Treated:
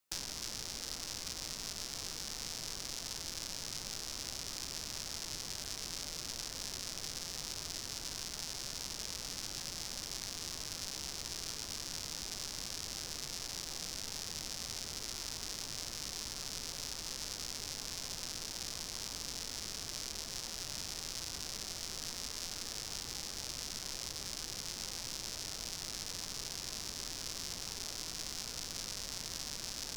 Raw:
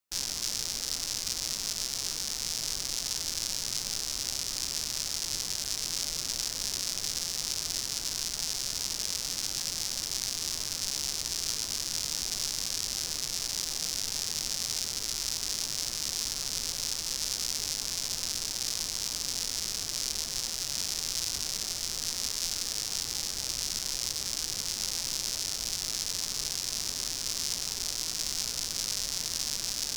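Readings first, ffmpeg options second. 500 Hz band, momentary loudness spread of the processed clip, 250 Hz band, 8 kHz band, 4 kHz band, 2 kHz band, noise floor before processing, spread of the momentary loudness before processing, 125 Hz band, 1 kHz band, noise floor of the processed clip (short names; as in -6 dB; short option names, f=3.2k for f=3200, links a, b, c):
-3.5 dB, 0 LU, -3.5 dB, -10.5 dB, -9.0 dB, -5.5 dB, -37 dBFS, 1 LU, -3.5 dB, -3.5 dB, -45 dBFS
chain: -filter_complex "[0:a]acrossover=split=120|1700|3900[a][b][c][d];[a]acompressor=threshold=-56dB:ratio=4[e];[b]acompressor=threshold=-55dB:ratio=4[f];[c]acompressor=threshold=-50dB:ratio=4[g];[d]acompressor=threshold=-46dB:ratio=4[h];[e][f][g][h]amix=inputs=4:normalize=0,volume=3.5dB"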